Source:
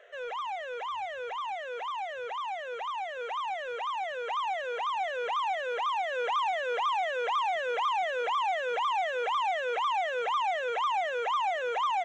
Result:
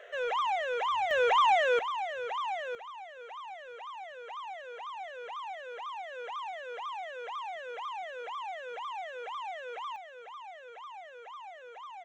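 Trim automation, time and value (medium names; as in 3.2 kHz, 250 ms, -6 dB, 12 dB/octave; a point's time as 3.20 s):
+5 dB
from 1.11 s +11.5 dB
from 1.79 s +1 dB
from 2.75 s -10 dB
from 9.96 s -17 dB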